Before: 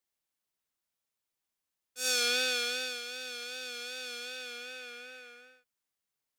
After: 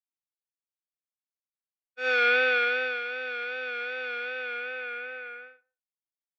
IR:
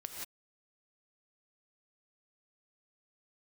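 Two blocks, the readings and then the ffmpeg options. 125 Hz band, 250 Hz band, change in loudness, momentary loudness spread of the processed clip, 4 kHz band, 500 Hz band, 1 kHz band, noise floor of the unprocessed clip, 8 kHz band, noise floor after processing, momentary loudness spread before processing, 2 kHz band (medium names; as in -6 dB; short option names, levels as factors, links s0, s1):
no reading, +1.5 dB, +5.0 dB, 15 LU, -4.5 dB, +10.0 dB, +12.5 dB, under -85 dBFS, under -25 dB, under -85 dBFS, 19 LU, +11.0 dB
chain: -filter_complex "[0:a]highpass=290,equalizer=f=310:t=q:w=4:g=5,equalizer=f=540:t=q:w=4:g=8,equalizer=f=890:t=q:w=4:g=8,equalizer=f=1400:t=q:w=4:g=10,equalizer=f=2100:t=q:w=4:g=10,lowpass=f=2900:w=0.5412,lowpass=f=2900:w=1.3066,agate=range=0.0224:threshold=0.00501:ratio=3:detection=peak,asplit=2[s0][s1];[1:a]atrim=start_sample=2205,lowpass=1200[s2];[s1][s2]afir=irnorm=-1:irlink=0,volume=0.119[s3];[s0][s3]amix=inputs=2:normalize=0,volume=1.5"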